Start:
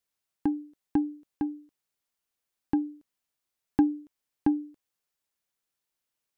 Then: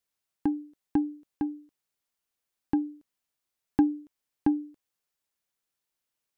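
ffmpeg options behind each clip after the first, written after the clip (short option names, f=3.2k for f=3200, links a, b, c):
-af anull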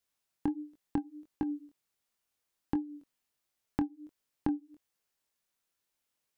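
-af "flanger=delay=19:depth=6.5:speed=1.4,acompressor=threshold=-33dB:ratio=8,volume=4.5dB"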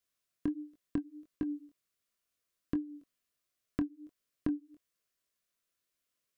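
-af "asuperstop=centerf=850:order=12:qfactor=3.8,volume=-1.5dB"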